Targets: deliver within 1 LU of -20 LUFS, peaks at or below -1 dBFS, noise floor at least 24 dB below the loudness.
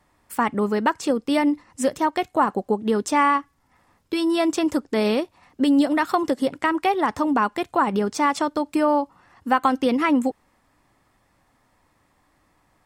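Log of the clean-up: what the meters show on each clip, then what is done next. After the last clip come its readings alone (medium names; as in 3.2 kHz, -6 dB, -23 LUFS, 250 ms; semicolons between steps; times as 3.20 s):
loudness -22.0 LUFS; peak level -7.0 dBFS; loudness target -20.0 LUFS
-> trim +2 dB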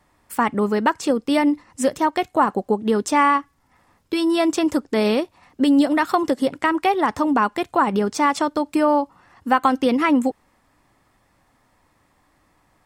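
loudness -20.0 LUFS; peak level -5.0 dBFS; noise floor -63 dBFS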